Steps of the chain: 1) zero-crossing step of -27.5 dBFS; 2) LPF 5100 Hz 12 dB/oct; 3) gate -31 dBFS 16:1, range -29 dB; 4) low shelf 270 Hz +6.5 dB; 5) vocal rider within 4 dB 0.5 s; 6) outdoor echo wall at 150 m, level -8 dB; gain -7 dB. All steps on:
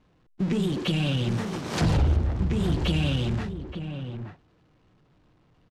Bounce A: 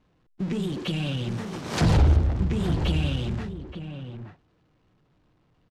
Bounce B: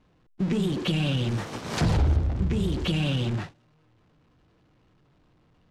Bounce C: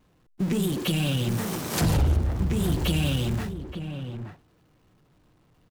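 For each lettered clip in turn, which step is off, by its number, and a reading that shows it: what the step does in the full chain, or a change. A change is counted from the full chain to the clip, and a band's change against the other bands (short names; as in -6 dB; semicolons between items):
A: 5, crest factor change +1.5 dB; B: 6, echo-to-direct -10.5 dB to none; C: 2, 8 kHz band +8.5 dB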